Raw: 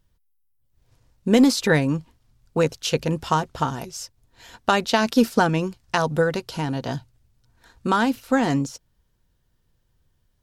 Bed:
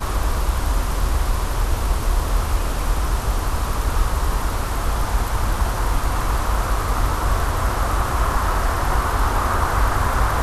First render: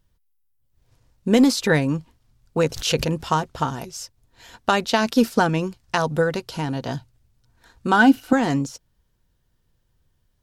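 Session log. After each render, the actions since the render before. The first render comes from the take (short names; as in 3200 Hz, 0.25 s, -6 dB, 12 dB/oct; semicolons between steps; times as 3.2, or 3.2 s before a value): 2.59–3.25 backwards sustainer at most 84 dB/s; 7.92–8.33 small resonant body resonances 300/750/1500/2900 Hz, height 13 dB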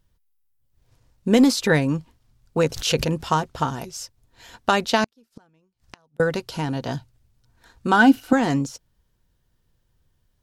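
5.04–6.2 flipped gate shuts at -22 dBFS, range -40 dB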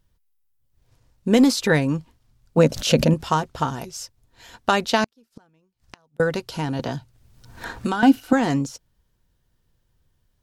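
2.57–3.14 small resonant body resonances 220/580 Hz, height 14 dB, ringing for 40 ms; 6.79–8.03 three-band squash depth 100%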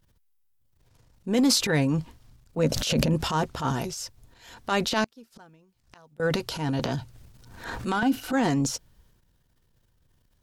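compressor 2:1, threshold -21 dBFS, peak gain reduction 7 dB; transient shaper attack -10 dB, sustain +8 dB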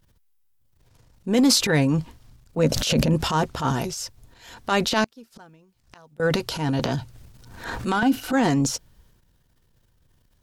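gain +3.5 dB; limiter -2 dBFS, peak gain reduction 3 dB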